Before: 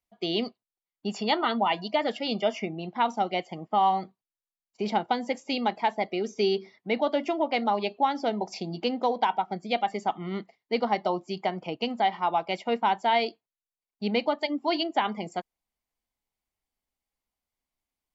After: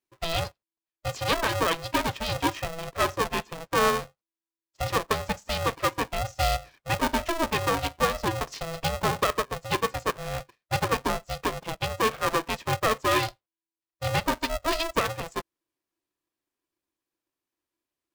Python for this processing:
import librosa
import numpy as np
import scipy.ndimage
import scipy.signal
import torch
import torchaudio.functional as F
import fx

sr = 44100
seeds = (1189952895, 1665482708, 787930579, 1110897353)

y = x * np.sign(np.sin(2.0 * np.pi * 330.0 * np.arange(len(x)) / sr))